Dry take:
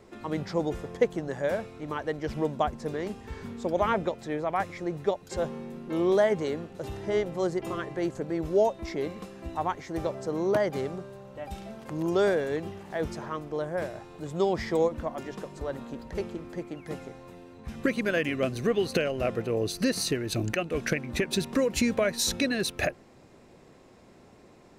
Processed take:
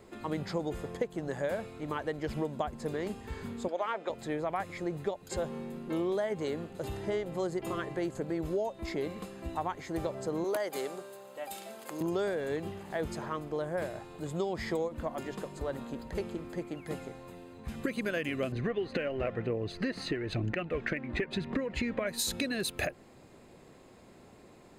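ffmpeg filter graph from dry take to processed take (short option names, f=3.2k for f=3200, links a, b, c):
-filter_complex "[0:a]asettb=1/sr,asplit=3[a][b][c];[a]atrim=end=3.684[d];[b]atrim=start=3.68:end=4.1,asetpts=PTS-STARTPTS,afade=t=in:d=0.004:c=qsin,afade=t=out:st=0.416:d=0.004:c=qsin,highpass=490,adynamicsmooth=sensitivity=3:basefreq=6.7k[e];[c]atrim=start=4.096[f];[d][e]acrossfade=d=0.004:c1=hsin:c2=qsin[g];[g][f]acrossfade=d=0.004:c1=qsin:c2=hsin,asettb=1/sr,asplit=3[h][i][j];[h]atrim=end=10.444[k];[i]atrim=start=10.44:end=12.01,asetpts=PTS-STARTPTS,afade=t=in:d=0.004:c=qsin,afade=t=out:st=1.566:d=0.004:c=qsin,highpass=370,highshelf=f=5.8k:g=11[l];[j]atrim=start=12.006[m];[k][l]acrossfade=d=0.004:c1=hsin:c2=qsin[n];[n][m]acrossfade=d=0.004:c1=qsin:c2=hsin,asettb=1/sr,asplit=3[o][p][q];[o]atrim=end=18.524[r];[p]atrim=start=18.52:end=22.07,asetpts=PTS-STARTPTS,afade=t=in:d=0.004:c=qsin,afade=t=out:st=3.546:d=0.004:c=qsin,lowpass=2.7k,aphaser=in_gain=1:out_gain=1:delay=3.9:decay=0.36:speed=1:type=triangular,equalizer=f=1.9k:w=4.7:g=5.5[s];[q]atrim=start=22.066[t];[r][s]acrossfade=d=0.004:c1=hsin:c2=qsin[u];[u][t]acrossfade=d=0.004:c1=qsin:c2=hsin,highshelf=f=6k:g=5,bandreject=f=5.7k:w=5.2,acompressor=threshold=-28dB:ratio=6,volume=-1dB"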